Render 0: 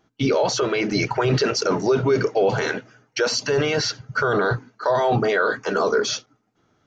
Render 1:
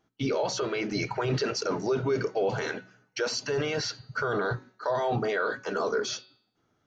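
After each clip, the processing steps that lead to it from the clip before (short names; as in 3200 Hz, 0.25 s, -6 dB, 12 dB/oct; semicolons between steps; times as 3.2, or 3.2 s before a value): de-hum 186.5 Hz, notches 26; gain -8 dB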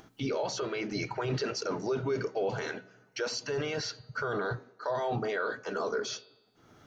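upward compressor, threshold -36 dBFS; band-limited delay 0.105 s, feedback 51%, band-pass 530 Hz, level -21.5 dB; gain -4 dB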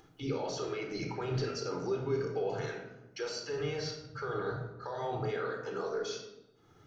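shoebox room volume 2800 m³, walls furnished, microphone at 4 m; gain -8 dB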